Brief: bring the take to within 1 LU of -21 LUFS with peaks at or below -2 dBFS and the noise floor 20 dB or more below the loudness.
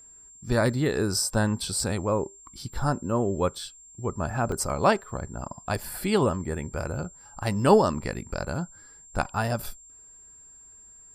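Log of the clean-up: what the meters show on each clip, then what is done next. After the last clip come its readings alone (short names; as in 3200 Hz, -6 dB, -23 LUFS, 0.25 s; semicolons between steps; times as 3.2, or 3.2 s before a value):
dropouts 2; longest dropout 1.3 ms; steady tone 7400 Hz; tone level -48 dBFS; loudness -27.0 LUFS; peak -5.0 dBFS; loudness target -21.0 LUFS
-> interpolate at 1.8/4.52, 1.3 ms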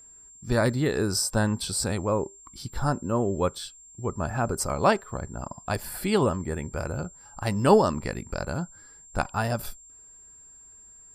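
dropouts 0; steady tone 7400 Hz; tone level -48 dBFS
-> notch 7400 Hz, Q 30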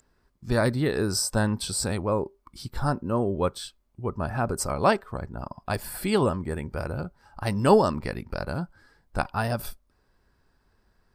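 steady tone none; loudness -27.0 LUFS; peak -5.0 dBFS; loudness target -21.0 LUFS
-> gain +6 dB; limiter -2 dBFS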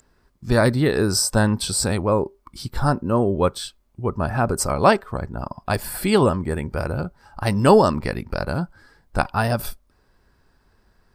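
loudness -21.5 LUFS; peak -2.0 dBFS; noise floor -62 dBFS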